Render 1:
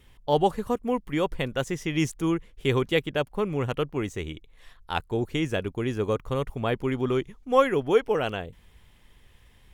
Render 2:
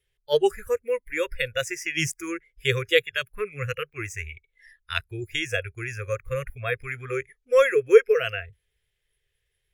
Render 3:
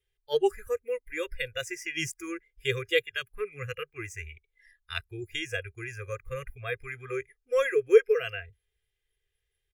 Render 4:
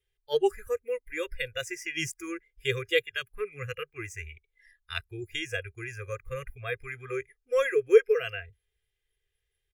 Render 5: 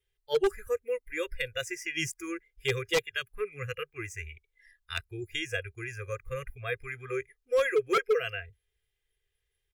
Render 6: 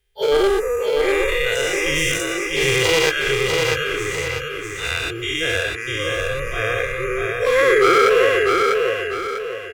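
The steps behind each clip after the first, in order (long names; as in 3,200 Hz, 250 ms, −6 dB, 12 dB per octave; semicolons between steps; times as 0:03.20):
noise reduction from a noise print of the clip's start 23 dB; drawn EQ curve 150 Hz 0 dB, 260 Hz −26 dB, 400 Hz +9 dB, 1,000 Hz −9 dB, 1,600 Hz +7 dB
comb filter 2.5 ms, depth 52%; level −7 dB
no processing that can be heard
wave folding −18 dBFS
every bin's largest magnitude spread in time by 240 ms; repeating echo 646 ms, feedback 40%, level −3.5 dB; level +4.5 dB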